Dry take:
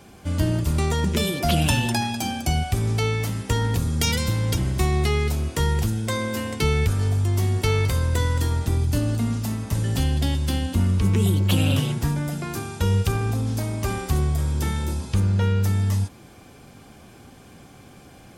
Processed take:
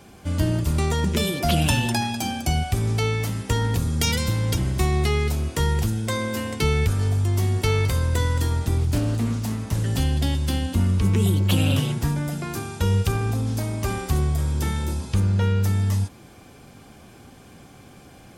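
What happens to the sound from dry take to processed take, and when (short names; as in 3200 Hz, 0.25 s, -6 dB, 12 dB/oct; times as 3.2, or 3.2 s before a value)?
8.78–9.86 Doppler distortion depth 0.34 ms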